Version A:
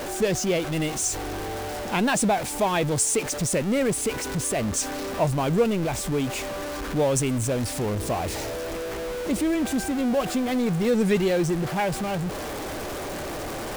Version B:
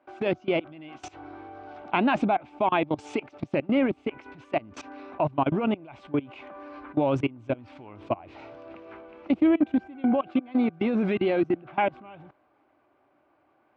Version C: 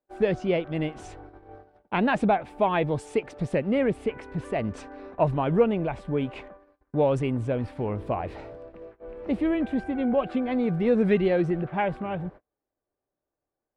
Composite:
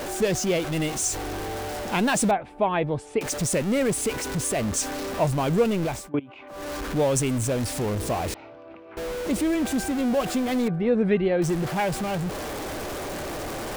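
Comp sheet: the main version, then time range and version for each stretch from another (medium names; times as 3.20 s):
A
2.31–3.21 s: from C
5.98–6.59 s: from B, crossfade 0.24 s
8.34–8.97 s: from B
10.68–11.42 s: from C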